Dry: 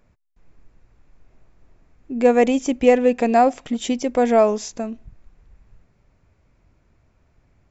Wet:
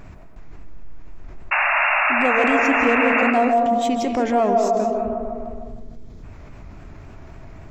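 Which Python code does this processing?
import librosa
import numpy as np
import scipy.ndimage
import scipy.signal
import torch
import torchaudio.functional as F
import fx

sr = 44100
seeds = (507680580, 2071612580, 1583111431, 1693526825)

y = fx.self_delay(x, sr, depth_ms=0.063)
y = fx.hum_notches(y, sr, base_hz=60, count=4)
y = fx.vibrato(y, sr, rate_hz=3.7, depth_cents=95.0)
y = fx.echo_wet_bandpass(y, sr, ms=152, feedback_pct=51, hz=590.0, wet_db=-3.5)
y = fx.spec_box(y, sr, start_s=5.54, length_s=0.69, low_hz=530.0, high_hz=3000.0, gain_db=-10)
y = fx.high_shelf(y, sr, hz=3800.0, db=-6.5)
y = fx.spec_paint(y, sr, seeds[0], shape='noise', start_s=1.51, length_s=1.8, low_hz=570.0, high_hz=2800.0, level_db=-19.0)
y = fx.peak_eq(y, sr, hz=510.0, db=-7.5, octaves=0.39)
y = fx.rev_freeverb(y, sr, rt60_s=0.73, hf_ratio=0.5, predelay_ms=120, drr_db=6.5)
y = fx.env_flatten(y, sr, amount_pct=50)
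y = F.gain(torch.from_numpy(y), -4.0).numpy()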